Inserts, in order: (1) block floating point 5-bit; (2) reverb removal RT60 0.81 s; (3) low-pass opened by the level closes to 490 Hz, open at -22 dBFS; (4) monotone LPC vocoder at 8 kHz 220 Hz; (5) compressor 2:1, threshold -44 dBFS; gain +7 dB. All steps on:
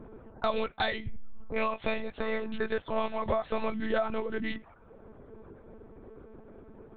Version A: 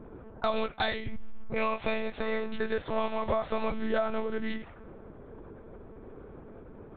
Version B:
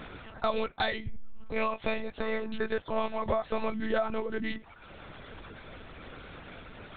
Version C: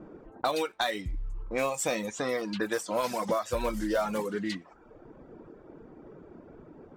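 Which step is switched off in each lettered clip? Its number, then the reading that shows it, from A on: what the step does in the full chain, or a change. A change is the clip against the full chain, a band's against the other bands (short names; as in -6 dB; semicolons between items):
2, momentary loudness spread change -2 LU; 3, momentary loudness spread change -4 LU; 4, 2 kHz band -2.0 dB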